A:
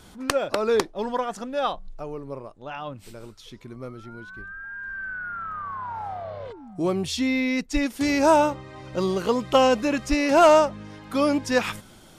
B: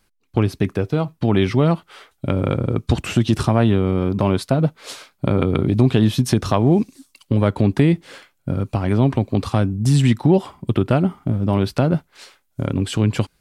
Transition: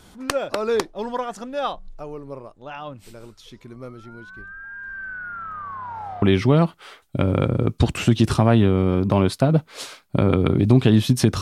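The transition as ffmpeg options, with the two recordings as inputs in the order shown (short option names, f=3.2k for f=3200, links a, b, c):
-filter_complex "[0:a]apad=whole_dur=11.41,atrim=end=11.41,atrim=end=6.222[a];[1:a]atrim=start=1.308:end=6.5[b];[a][b]acrossfade=d=0.004:c1=hsin:c2=hsin"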